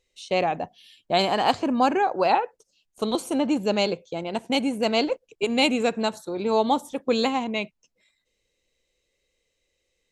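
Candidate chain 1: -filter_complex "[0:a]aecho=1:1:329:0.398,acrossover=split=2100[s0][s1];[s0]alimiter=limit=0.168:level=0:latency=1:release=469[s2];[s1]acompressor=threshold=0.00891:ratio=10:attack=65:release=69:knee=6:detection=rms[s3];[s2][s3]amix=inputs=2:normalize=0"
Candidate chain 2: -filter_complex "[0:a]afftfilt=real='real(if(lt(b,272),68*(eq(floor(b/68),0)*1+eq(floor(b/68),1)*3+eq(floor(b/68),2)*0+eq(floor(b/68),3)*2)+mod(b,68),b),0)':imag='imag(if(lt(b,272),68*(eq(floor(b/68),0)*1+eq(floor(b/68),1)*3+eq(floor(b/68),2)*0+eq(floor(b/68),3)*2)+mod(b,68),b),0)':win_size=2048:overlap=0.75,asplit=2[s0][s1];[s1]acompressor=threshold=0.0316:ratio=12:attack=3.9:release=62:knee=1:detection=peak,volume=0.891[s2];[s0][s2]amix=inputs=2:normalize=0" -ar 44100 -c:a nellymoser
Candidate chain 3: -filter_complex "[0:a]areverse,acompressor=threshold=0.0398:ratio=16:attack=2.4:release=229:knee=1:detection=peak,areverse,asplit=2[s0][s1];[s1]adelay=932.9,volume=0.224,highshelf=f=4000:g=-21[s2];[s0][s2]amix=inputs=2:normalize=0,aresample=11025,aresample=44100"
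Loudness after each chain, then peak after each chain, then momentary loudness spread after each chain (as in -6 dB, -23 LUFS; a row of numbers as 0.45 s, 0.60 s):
-27.5 LUFS, -19.5 LUFS, -35.0 LUFS; -13.5 dBFS, -4.5 dBFS, -21.5 dBFS; 6 LU, 7 LU, 14 LU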